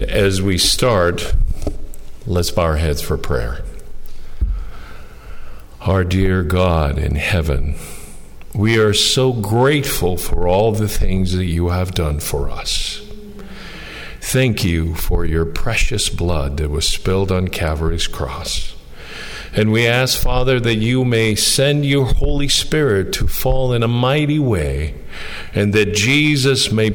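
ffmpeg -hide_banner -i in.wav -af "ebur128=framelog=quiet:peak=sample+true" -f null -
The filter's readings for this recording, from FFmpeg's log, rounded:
Integrated loudness:
  I:         -16.9 LUFS
  Threshold: -27.7 LUFS
Loudness range:
  LRA:         6.3 LU
  Threshold: -38.0 LUFS
  LRA low:   -21.8 LUFS
  LRA high:  -15.5 LUFS
Sample peak:
  Peak:       -4.0 dBFS
True peak:
  Peak:       -4.0 dBFS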